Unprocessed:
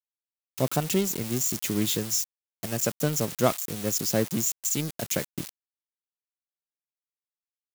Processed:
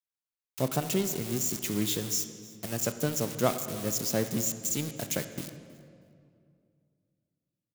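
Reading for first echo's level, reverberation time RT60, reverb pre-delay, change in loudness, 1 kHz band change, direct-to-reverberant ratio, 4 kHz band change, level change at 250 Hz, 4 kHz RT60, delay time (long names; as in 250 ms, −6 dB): −22.5 dB, 2.4 s, 24 ms, −3.5 dB, −3.0 dB, 9.0 dB, −3.0 dB, −3.0 dB, 1.5 s, 319 ms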